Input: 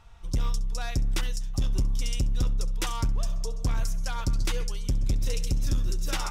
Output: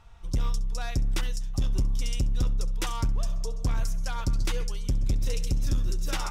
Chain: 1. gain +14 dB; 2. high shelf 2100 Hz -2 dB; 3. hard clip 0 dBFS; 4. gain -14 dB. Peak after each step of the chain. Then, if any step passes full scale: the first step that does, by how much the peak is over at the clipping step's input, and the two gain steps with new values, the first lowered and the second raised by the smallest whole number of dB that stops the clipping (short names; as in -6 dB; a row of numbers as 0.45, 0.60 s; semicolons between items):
-5.0, -5.0, -5.0, -19.0 dBFS; no overload